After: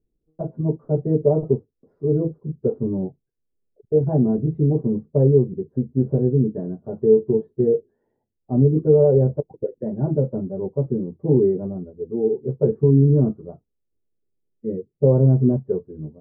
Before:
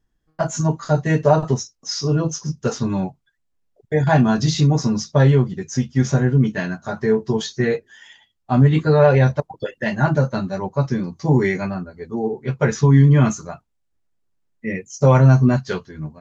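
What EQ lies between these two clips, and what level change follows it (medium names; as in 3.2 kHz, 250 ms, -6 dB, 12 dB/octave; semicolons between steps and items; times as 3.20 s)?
four-pole ladder low-pass 500 Hz, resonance 55%; +5.5 dB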